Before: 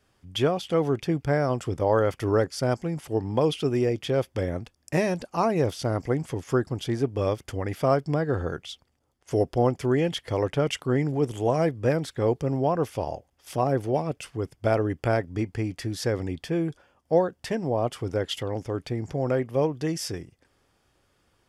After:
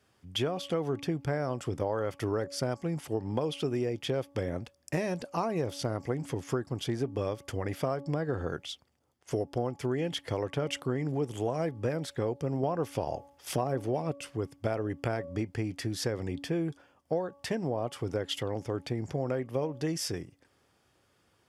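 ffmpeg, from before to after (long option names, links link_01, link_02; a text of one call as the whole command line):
ffmpeg -i in.wav -filter_complex "[0:a]asplit=3[link_01][link_02][link_03];[link_01]atrim=end=12.632[link_04];[link_02]atrim=start=12.628:end=14.122,asetpts=PTS-STARTPTS,volume=5.5dB[link_05];[link_03]atrim=start=14.118[link_06];[link_04][link_05]acrossfade=duration=0.004:curve1=hsin:curve2=hsin[link_07];[link_07][link_06]acrossfade=duration=0.004:curve1=hsin:curve2=hsin,highpass=80,bandreject=frequency=282:width_type=h:width=4,bandreject=frequency=564:width_type=h:width=4,bandreject=frequency=846:width_type=h:width=4,bandreject=frequency=1128:width_type=h:width=4,acompressor=threshold=-26dB:ratio=6,volume=-1dB" out.wav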